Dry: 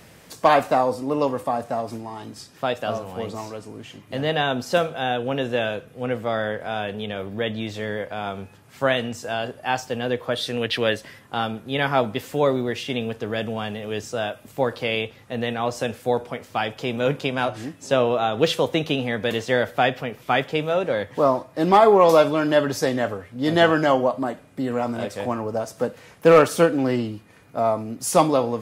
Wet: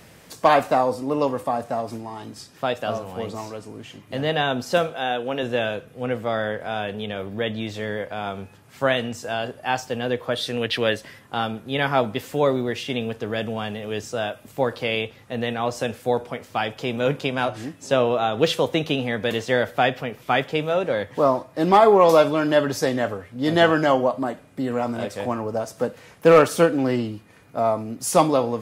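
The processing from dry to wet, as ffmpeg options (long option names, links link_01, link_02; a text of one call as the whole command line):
ffmpeg -i in.wav -filter_complex "[0:a]asettb=1/sr,asplit=3[link_01][link_02][link_03];[link_01]atrim=end=4.904[link_04];[link_02]atrim=start=4.9:end=5.43,asetpts=PTS-STARTPTS,afade=type=in:duration=0.004:curve=qsin,afade=type=out:start_time=0.526:duration=0.004:curve=qsin,equalizer=frequency=84:width=0.72:gain=-13[link_05];[link_03]atrim=start=5.426[link_06];[link_04][link_05]acrossfade=duration=0.004:curve1=hsin:curve2=qsin[link_07];[link_07][link_06]acrossfade=duration=0.004:curve1=qsin:curve2=hsin" out.wav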